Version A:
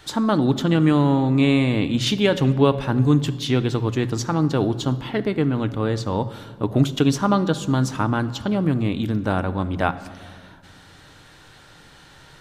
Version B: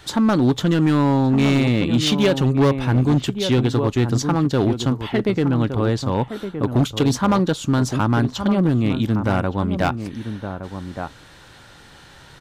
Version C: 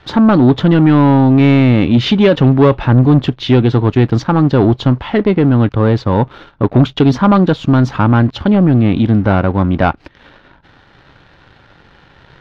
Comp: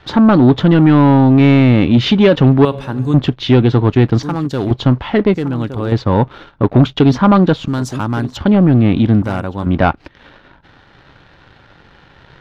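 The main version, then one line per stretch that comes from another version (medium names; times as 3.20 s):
C
2.65–3.14 s: from A
4.23–4.71 s: from B
5.34–5.92 s: from B
7.68–8.37 s: from B
9.22–9.66 s: from B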